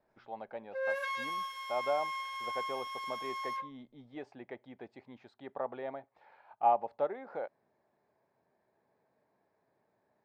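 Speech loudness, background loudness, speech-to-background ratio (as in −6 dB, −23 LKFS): −38.5 LKFS, −37.5 LKFS, −1.0 dB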